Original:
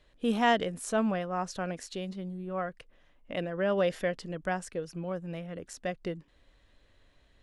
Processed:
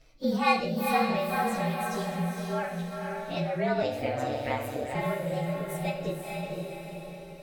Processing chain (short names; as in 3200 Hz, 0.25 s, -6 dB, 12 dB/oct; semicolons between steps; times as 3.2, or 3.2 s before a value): inharmonic rescaling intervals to 113%; reverb removal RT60 0.72 s; diffused feedback echo 0.492 s, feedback 46%, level -4 dB; 3.82–4.95 ring modulator 67 Hz; in parallel at +2.5 dB: compressor, threshold -41 dBFS, peak gain reduction 18 dB; on the sum: non-linear reverb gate 0.22 s falling, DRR 3 dB